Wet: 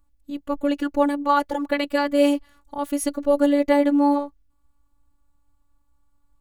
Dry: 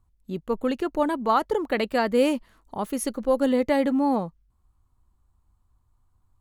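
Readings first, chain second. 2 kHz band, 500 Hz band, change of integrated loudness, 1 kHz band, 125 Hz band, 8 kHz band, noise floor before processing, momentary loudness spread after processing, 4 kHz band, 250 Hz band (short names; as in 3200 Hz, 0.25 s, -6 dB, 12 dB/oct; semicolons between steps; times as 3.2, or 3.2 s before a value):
+2.5 dB, +2.0 dB, +3.0 dB, +2.5 dB, under -10 dB, +2.0 dB, -68 dBFS, 13 LU, +2.5 dB, +4.0 dB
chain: robotiser 287 Hz; gain +4.5 dB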